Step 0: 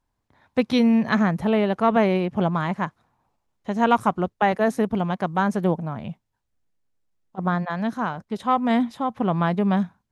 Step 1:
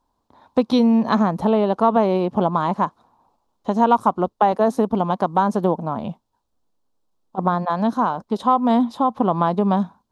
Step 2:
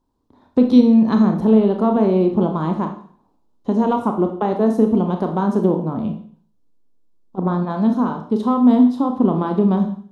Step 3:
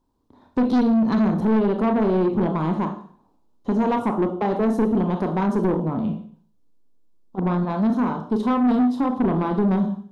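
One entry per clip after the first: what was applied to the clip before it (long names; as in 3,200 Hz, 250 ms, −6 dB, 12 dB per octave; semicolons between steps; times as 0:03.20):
octave-band graphic EQ 125/250/500/1,000/2,000/4,000 Hz −5/+6/+4/+11/−11/+6 dB; downward compressor 2 to 1, threshold −19 dBFS, peak gain reduction 8.5 dB; level +2 dB
low shelf with overshoot 500 Hz +8 dB, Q 1.5; four-comb reverb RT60 0.5 s, combs from 25 ms, DRR 4 dB; level −5.5 dB
soft clipping −15 dBFS, distortion −10 dB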